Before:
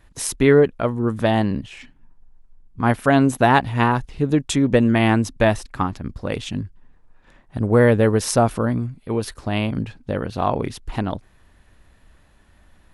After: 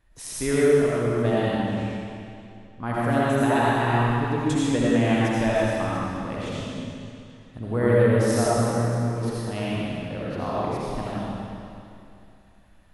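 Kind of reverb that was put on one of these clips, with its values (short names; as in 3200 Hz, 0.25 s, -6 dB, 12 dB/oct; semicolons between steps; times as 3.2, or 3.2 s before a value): digital reverb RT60 2.6 s, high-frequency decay 0.95×, pre-delay 40 ms, DRR -8 dB; gain -12.5 dB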